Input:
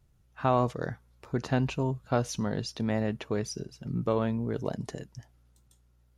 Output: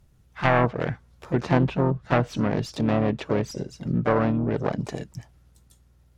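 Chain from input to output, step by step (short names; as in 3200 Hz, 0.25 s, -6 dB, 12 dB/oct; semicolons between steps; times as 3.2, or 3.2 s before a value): self-modulated delay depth 0.31 ms; treble ducked by the level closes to 2000 Hz, closed at -24.5 dBFS; harmoniser +3 st -16 dB, +5 st -8 dB; gain +6 dB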